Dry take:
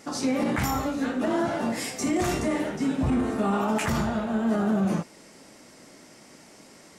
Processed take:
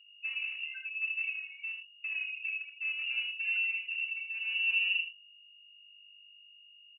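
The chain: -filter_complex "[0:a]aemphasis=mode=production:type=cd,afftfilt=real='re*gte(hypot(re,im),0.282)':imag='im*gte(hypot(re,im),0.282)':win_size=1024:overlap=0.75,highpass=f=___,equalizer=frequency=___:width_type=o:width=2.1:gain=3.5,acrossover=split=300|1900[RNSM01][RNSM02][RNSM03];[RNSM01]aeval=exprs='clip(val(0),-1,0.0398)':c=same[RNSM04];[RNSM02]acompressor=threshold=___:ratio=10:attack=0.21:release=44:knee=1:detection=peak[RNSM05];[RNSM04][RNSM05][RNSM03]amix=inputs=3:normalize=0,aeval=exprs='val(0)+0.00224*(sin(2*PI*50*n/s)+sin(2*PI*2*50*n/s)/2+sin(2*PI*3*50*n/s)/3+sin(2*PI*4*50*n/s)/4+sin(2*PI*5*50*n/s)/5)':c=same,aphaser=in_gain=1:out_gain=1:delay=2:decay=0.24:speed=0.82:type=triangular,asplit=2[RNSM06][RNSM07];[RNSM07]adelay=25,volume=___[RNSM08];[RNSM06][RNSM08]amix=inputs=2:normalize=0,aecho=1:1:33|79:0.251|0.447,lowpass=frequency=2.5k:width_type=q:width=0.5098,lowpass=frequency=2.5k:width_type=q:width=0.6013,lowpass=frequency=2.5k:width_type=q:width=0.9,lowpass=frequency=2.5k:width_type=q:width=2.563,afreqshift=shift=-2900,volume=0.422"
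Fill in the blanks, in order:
140, 330, 0.00708, 0.422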